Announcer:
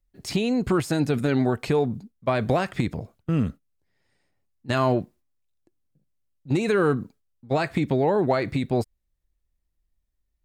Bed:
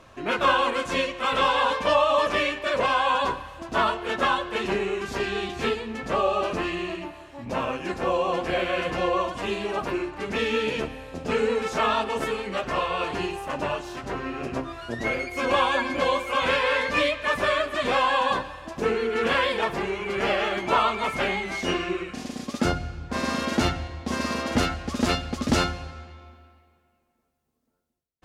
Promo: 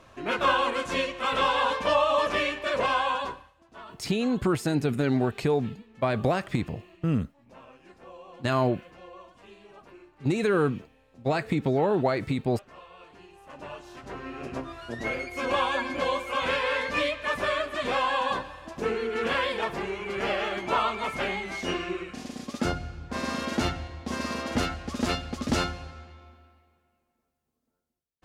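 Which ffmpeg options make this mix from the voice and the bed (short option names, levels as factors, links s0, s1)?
-filter_complex "[0:a]adelay=3750,volume=0.75[s0];[1:a]volume=6.31,afade=t=out:st=2.96:d=0.58:silence=0.1,afade=t=in:st=13.28:d=1.41:silence=0.11885[s1];[s0][s1]amix=inputs=2:normalize=0"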